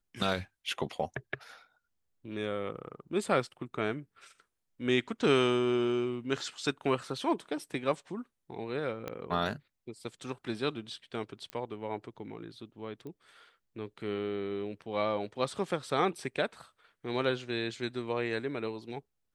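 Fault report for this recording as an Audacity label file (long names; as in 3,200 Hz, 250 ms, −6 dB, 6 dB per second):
9.080000	9.080000	click −22 dBFS
11.500000	11.500000	click −25 dBFS
13.070000	13.070000	click −33 dBFS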